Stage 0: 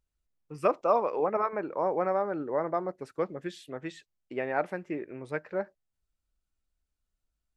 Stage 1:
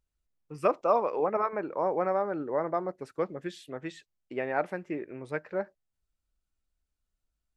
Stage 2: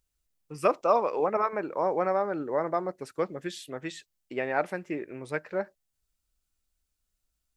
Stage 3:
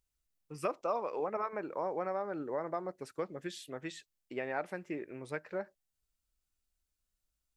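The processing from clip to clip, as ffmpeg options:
-af anull
-af "highshelf=f=3400:g=9.5,volume=1.12"
-af "acompressor=threshold=0.0355:ratio=2,volume=0.562"

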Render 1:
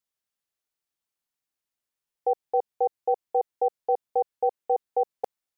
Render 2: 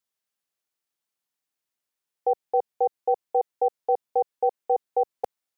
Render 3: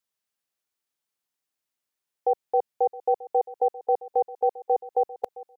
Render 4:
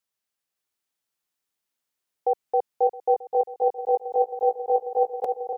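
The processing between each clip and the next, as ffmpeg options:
-af "highpass=f=130:p=1,volume=1.19"
-af "aecho=1:1:667|1334:0.126|0.0189"
-af "aecho=1:1:560|1064|1518|1926|2293:0.631|0.398|0.251|0.158|0.1"

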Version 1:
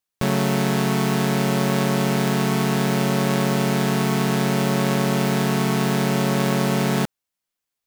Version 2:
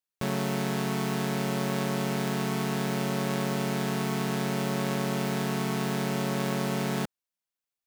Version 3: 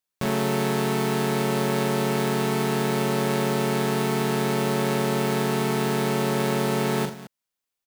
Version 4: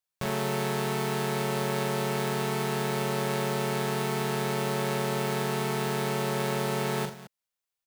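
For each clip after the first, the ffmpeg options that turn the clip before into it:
-af "lowshelf=f=81:g=-5.5,volume=0.398"
-af "aecho=1:1:41|84|216:0.501|0.211|0.178,volume=1.58"
-af "equalizer=f=270:w=3.6:g=-14.5,volume=0.668"

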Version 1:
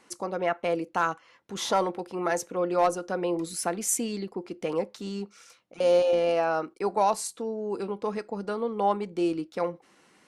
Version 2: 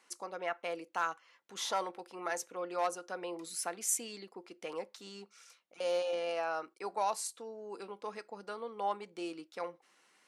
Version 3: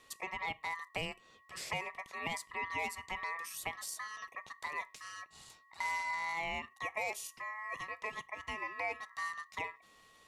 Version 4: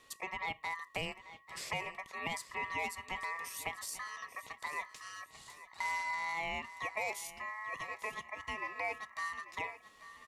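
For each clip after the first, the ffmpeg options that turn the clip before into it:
-af "highpass=f=1000:p=1,volume=0.562"
-filter_complex "[0:a]aeval=exprs='val(0)+0.000562*sin(2*PI*400*n/s)':c=same,acrossover=split=1400|4800[s0][s1][s2];[s0]acompressor=threshold=0.0126:ratio=4[s3];[s1]acompressor=threshold=0.00126:ratio=4[s4];[s2]acompressor=threshold=0.00398:ratio=4[s5];[s3][s4][s5]amix=inputs=3:normalize=0,aeval=exprs='val(0)*sin(2*PI*1500*n/s)':c=same,volume=1.88"
-af "aecho=1:1:841|1682|2523:0.178|0.064|0.023"

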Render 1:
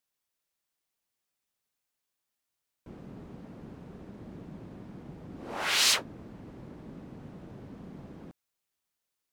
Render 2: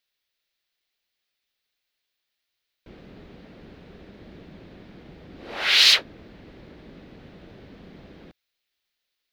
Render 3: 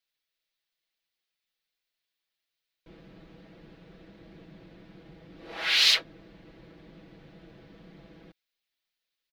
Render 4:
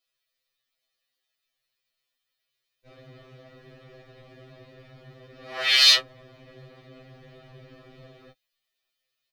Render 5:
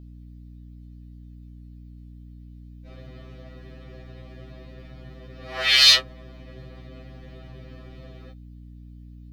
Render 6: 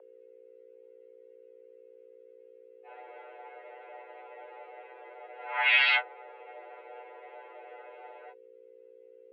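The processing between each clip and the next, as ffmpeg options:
-af "equalizer=f=125:t=o:w=1:g=-8,equalizer=f=250:t=o:w=1:g=-5,equalizer=f=1000:t=o:w=1:g=-7,equalizer=f=2000:t=o:w=1:g=4,equalizer=f=4000:t=o:w=1:g=9,equalizer=f=8000:t=o:w=1:g=-10,equalizer=f=16000:t=o:w=1:g=-5,volume=1.78"
-af "aecho=1:1:6.1:0.65,volume=0.447"
-af "afftfilt=real='re*2.45*eq(mod(b,6),0)':imag='im*2.45*eq(mod(b,6),0)':win_size=2048:overlap=0.75,volume=2.11"
-af "aeval=exprs='val(0)+0.00631*(sin(2*PI*60*n/s)+sin(2*PI*2*60*n/s)/2+sin(2*PI*3*60*n/s)/3+sin(2*PI*4*60*n/s)/4+sin(2*PI*5*60*n/s)/5)':c=same,volume=1.26"
-af "highpass=f=240:t=q:w=0.5412,highpass=f=240:t=q:w=1.307,lowpass=f=2400:t=q:w=0.5176,lowpass=f=2400:t=q:w=0.7071,lowpass=f=2400:t=q:w=1.932,afreqshift=220,volume=1.19"

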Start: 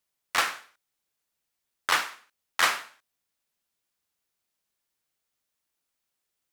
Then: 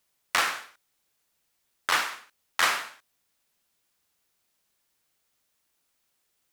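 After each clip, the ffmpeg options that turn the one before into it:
-af "alimiter=limit=0.126:level=0:latency=1:release=239,volume=2.37"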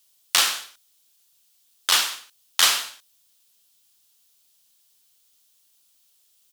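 -af "firequalizer=gain_entry='entry(2100,0);entry(3100,12);entry(14000,14)':delay=0.05:min_phase=1,volume=0.891"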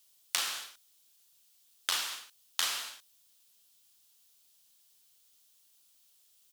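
-af "acompressor=threshold=0.0501:ratio=5,volume=0.708"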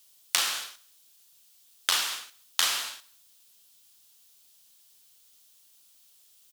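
-af "aecho=1:1:68|136|204|272:0.0708|0.0418|0.0246|0.0145,volume=2"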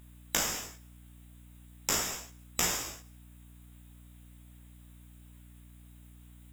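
-af "afftfilt=real='real(if(lt(b,736),b+184*(1-2*mod(floor(b/184),2)),b),0)':imag='imag(if(lt(b,736),b+184*(1-2*mod(floor(b/184),2)),b),0)':win_size=2048:overlap=0.75,flanger=delay=16.5:depth=4.4:speed=0.41,aeval=exprs='val(0)+0.00282*(sin(2*PI*60*n/s)+sin(2*PI*2*60*n/s)/2+sin(2*PI*3*60*n/s)/3+sin(2*PI*4*60*n/s)/4+sin(2*PI*5*60*n/s)/5)':c=same,volume=0.891"

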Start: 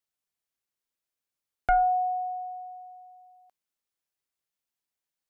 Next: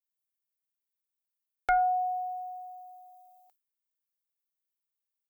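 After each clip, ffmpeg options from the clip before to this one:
-af "aemphasis=mode=production:type=bsi,agate=range=0.0224:threshold=0.00126:ratio=3:detection=peak,aecho=1:1:2.3:0.93,volume=0.75"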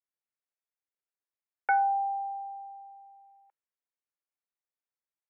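-af "highpass=f=220:t=q:w=0.5412,highpass=f=220:t=q:w=1.307,lowpass=f=2300:t=q:w=0.5176,lowpass=f=2300:t=q:w=0.7071,lowpass=f=2300:t=q:w=1.932,afreqshift=58"

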